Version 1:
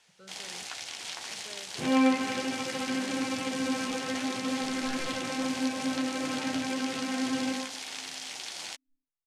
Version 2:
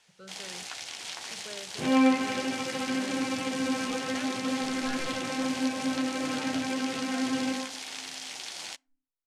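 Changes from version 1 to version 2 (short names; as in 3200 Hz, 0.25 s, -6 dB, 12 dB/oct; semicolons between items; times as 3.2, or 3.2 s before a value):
speech +4.5 dB; second sound: send on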